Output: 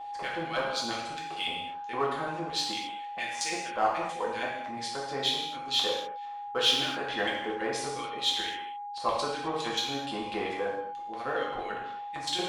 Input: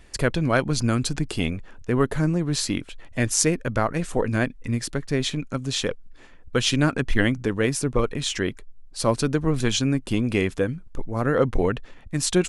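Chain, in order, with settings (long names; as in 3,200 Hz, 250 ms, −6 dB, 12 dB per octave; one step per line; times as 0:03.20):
auto-filter band-pass square 4.4 Hz 910–3,400 Hz
in parallel at −4 dB: gain into a clipping stage and back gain 26.5 dB
on the sum: steady tone 820 Hz −36 dBFS
reverb whose tail is shaped and stops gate 290 ms falling, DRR −4.5 dB
level −5 dB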